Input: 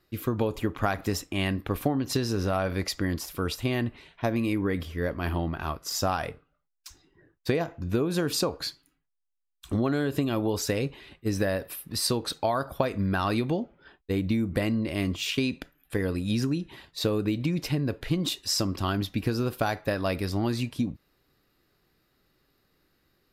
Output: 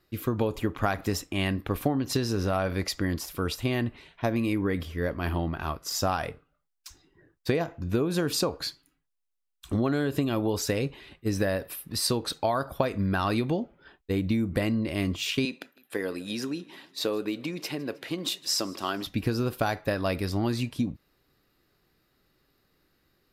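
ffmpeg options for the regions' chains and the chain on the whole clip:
-filter_complex "[0:a]asettb=1/sr,asplit=3[s0][s1][s2];[s0]atrim=end=15.454[s3];[s1]atrim=start=15.45:end=19.07,asetpts=PTS-STARTPTS,afade=t=in:d=0.004:c=qsin,afade=t=out:st=3.616:d=0.004:c=qsin,highpass=320,aecho=1:1:157|314|471|628:0.0708|0.0389|0.0214|0.0118,atrim=end_sample=159642[s4];[s2]atrim=start=19.066[s5];[s3][s4]acrossfade=d=0.004:c1=hsin:c2=qsin[s6];[s6][s5]acrossfade=d=0.004:c1=qsin:c2=hsin"

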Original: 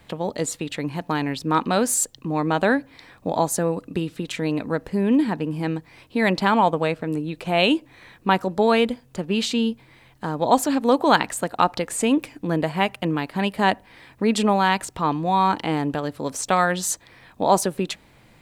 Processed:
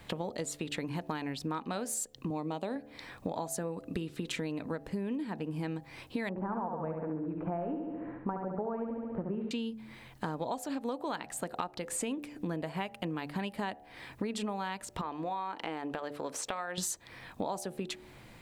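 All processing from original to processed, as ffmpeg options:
-filter_complex "[0:a]asettb=1/sr,asplit=3[s0][s1][s2];[s0]atrim=end=2.304[s3];[s1]atrim=start=2.3:end=2.76,asetpts=PTS-STARTPTS,afade=t=in:d=0.004:c=qsin,afade=t=out:st=0.456:d=0.004:c=qsin,highpass=120,equalizer=f=1600:t=o:w=0.62:g=-14.5[s4];[s2]atrim=start=2.756[s5];[s3][s4]acrossfade=d=0.004:c1=hsin:c2=qsin[s6];[s6][s5]acrossfade=d=0.004:c1=qsin:c2=hsin,asettb=1/sr,asplit=3[s7][s8][s9];[s7]atrim=end=6.294[s10];[s8]atrim=start=6.29:end=9.51,asetpts=PTS-STARTPTS,afade=t=in:d=0.004:c=qsin,afade=t=out:st=3.216:d=0.004:c=qsin,deesser=0.8,lowpass=f=1400:w=0.5412,lowpass=f=1400:w=1.3066,aecho=1:1:70|140|210|280|350|420|490|560:0.562|0.332|0.196|0.115|0.0681|0.0402|0.0237|0.014,atrim=end_sample=142002[s11];[s9]atrim=start=9.506[s12];[s10][s11]acrossfade=d=0.004:c1=hsin:c2=qsin[s13];[s13][s12]acrossfade=d=0.004:c1=qsin:c2=hsin,asettb=1/sr,asplit=3[s14][s15][s16];[s14]atrim=end=15.014[s17];[s15]atrim=start=15.01:end=16.78,asetpts=PTS-STARTPTS,afade=t=in:d=0.004:c=qsin,afade=t=out:st=1.766:d=0.004:c=qsin,bass=f=250:g=-14,treble=f=4000:g=-8,acompressor=threshold=0.02:ratio=2:attack=3.2:release=140:knee=1:detection=peak[s18];[s16]atrim=start=16.776[s19];[s17][s18]acrossfade=d=0.004:c1=hsin:c2=qsin[s20];[s20][s19]acrossfade=d=0.004:c1=qsin:c2=hsin,bandreject=f=73.28:t=h:w=4,bandreject=f=146.56:t=h:w=4,bandreject=f=219.84:t=h:w=4,bandreject=f=293.12:t=h:w=4,bandreject=f=366.4:t=h:w=4,bandreject=f=439.68:t=h:w=4,bandreject=f=512.96:t=h:w=4,bandreject=f=586.24:t=h:w=4,bandreject=f=659.52:t=h:w=4,bandreject=f=732.8:t=h:w=4,bandreject=f=806.08:t=h:w=4,acompressor=threshold=0.0251:ratio=16"

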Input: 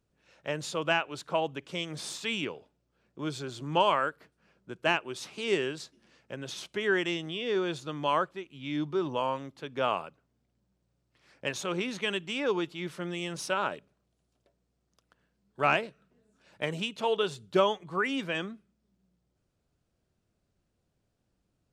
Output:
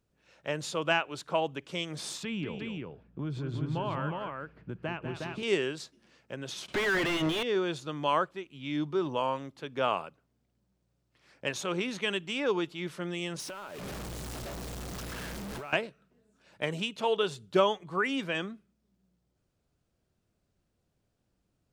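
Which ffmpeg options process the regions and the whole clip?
-filter_complex "[0:a]asettb=1/sr,asplit=3[s0][s1][s2];[s0]atrim=end=2.234[s3];[s1]atrim=start=2.23:end=5.43,asetpts=PTS-STARTPTS,afade=t=in:d=0.004:c=qsin,afade=t=out:st=3.196:d=0.004:c=qsin,bass=f=250:g=14,treble=f=4000:g=-15,acompressor=threshold=0.0224:ratio=3:attack=3.2:release=140:knee=1:detection=peak,aecho=1:1:195|362:0.398|0.668,atrim=end_sample=141120[s4];[s2]atrim=start=5.426[s5];[s3][s4]acrossfade=d=0.004:c1=hsin:c2=qsin[s6];[s6][s5]acrossfade=d=0.004:c1=qsin:c2=hsin,asettb=1/sr,asplit=3[s7][s8][s9];[s7]atrim=end=6.684[s10];[s8]atrim=start=6.68:end=7.43,asetpts=PTS-STARTPTS,afade=t=in:d=0.004:c=qsin,afade=t=out:st=0.746:d=0.004:c=qsin,equalizer=f=530:w=0.84:g=-6,asplit=2[s11][s12];[s12]highpass=f=720:p=1,volume=79.4,asoftclip=type=tanh:threshold=0.119[s13];[s11][s13]amix=inputs=2:normalize=0,lowpass=f=1200:p=1,volume=0.501[s14];[s9]atrim=start=7.426[s15];[s10][s14]acrossfade=d=0.004:c1=hsin:c2=qsin[s16];[s16][s15]acrossfade=d=0.004:c1=qsin:c2=hsin,asettb=1/sr,asplit=3[s17][s18][s19];[s17]atrim=end=13.404[s20];[s18]atrim=start=13.4:end=15.73,asetpts=PTS-STARTPTS,afade=t=in:d=0.004:c=qsin,afade=t=out:st=2.326:d=0.004:c=qsin,aeval=exprs='val(0)+0.5*0.0224*sgn(val(0))':c=same,acompressor=threshold=0.0126:ratio=10:attack=3.2:release=140:knee=1:detection=peak[s21];[s19]atrim=start=15.726[s22];[s20][s21]acrossfade=d=0.004:c1=hsin:c2=qsin[s23];[s23][s22]acrossfade=d=0.004:c1=qsin:c2=hsin"

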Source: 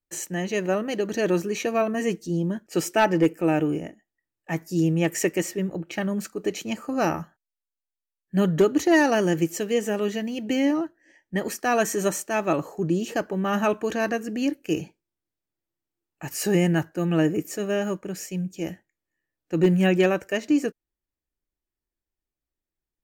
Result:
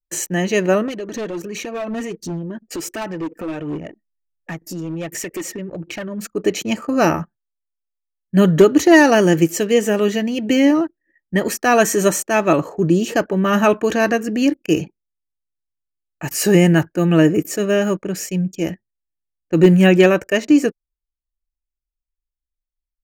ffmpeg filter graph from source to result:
-filter_complex "[0:a]asettb=1/sr,asplit=3[s0][s1][s2];[s0]atrim=end=0.884[s3];[s1]atrim=start=0.88:end=6.29,asetpts=PTS-STARTPTS,afade=t=in:d=0.004:c=qsin,afade=t=out:st=5.406:d=0.004:c=qsin,acompressor=threshold=0.0158:ratio=2.5:attack=3.2:release=140:knee=1:detection=peak,aphaser=in_gain=1:out_gain=1:delay=4.7:decay=0.46:speed=1.4:type=triangular,volume=31.6,asoftclip=hard,volume=0.0316[s4];[s2]atrim=start=6.286[s5];[s3][s4]acrossfade=d=0.004:c1=hsin:c2=qsin[s6];[s6][s5]acrossfade=d=0.004:c1=qsin:c2=hsin,anlmdn=0.0251,bandreject=f=790:w=12,volume=2.66"

